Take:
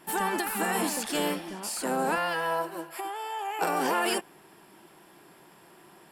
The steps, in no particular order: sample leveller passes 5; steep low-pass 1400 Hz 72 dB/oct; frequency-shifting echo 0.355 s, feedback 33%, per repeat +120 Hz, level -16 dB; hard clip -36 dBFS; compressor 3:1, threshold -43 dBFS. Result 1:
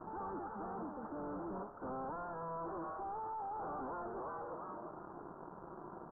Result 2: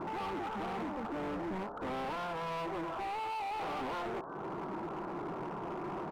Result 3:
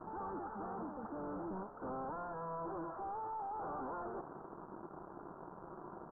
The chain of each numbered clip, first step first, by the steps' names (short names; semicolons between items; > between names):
frequency-shifting echo > sample leveller > hard clip > compressor > steep low-pass; compressor > sample leveller > steep low-pass > frequency-shifting echo > hard clip; sample leveller > hard clip > compressor > frequency-shifting echo > steep low-pass